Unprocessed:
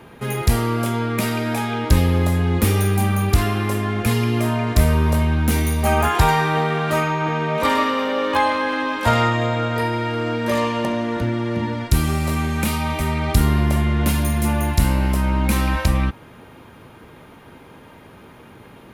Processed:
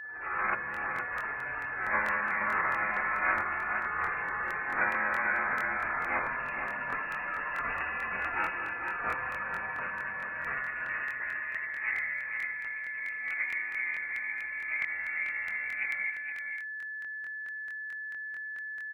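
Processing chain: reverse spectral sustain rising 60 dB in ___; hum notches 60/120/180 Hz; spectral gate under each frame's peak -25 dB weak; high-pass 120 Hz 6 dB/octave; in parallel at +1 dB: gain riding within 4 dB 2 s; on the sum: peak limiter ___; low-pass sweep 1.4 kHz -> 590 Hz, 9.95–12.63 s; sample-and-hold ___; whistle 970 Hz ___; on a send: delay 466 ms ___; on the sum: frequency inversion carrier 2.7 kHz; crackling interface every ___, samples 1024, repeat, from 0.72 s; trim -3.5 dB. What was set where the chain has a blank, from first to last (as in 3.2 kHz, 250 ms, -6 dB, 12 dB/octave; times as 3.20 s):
0.70 s, -10.5 dBFS, 4×, -36 dBFS, -7 dB, 0.22 s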